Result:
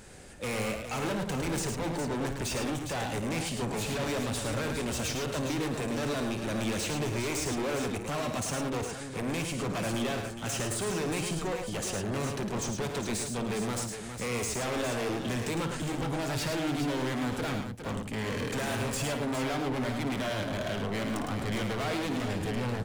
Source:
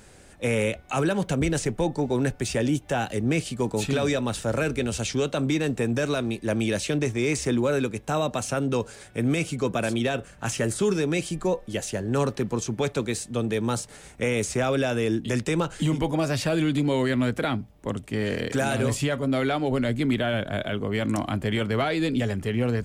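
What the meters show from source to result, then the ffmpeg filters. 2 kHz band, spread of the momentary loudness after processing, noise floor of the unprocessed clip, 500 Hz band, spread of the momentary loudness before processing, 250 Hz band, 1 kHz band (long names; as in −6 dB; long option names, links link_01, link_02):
−5.0 dB, 2 LU, −49 dBFS, −7.5 dB, 4 LU, −7.0 dB, −3.5 dB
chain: -af "volume=31.5dB,asoftclip=hard,volume=-31.5dB,aecho=1:1:55|107|410:0.299|0.501|0.376"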